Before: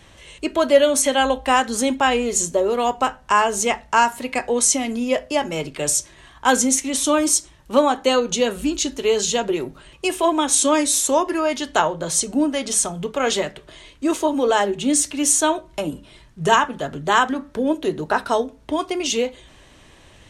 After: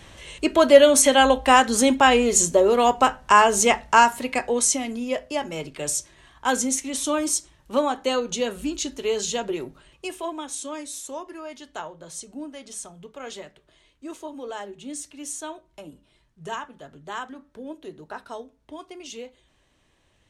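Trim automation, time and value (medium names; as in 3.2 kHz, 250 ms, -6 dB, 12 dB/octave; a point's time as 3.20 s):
3.87 s +2 dB
5.01 s -6 dB
9.64 s -6 dB
10.64 s -16.5 dB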